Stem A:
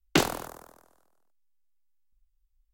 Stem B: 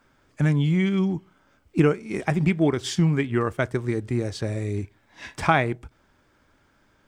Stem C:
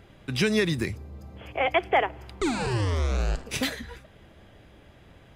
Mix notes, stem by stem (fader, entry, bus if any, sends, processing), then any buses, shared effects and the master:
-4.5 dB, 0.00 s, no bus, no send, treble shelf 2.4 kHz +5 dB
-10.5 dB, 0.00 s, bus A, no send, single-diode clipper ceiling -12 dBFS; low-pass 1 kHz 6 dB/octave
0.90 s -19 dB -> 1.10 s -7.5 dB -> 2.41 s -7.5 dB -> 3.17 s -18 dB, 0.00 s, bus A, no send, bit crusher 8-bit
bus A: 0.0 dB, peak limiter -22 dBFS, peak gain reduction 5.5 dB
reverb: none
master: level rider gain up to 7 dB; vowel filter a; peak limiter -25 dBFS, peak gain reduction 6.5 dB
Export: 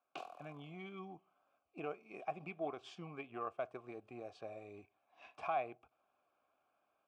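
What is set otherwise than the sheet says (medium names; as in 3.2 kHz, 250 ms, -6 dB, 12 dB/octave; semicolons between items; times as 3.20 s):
stem A -4.5 dB -> -14.0 dB; stem B: missing low-pass 1 kHz 6 dB/octave; stem C: muted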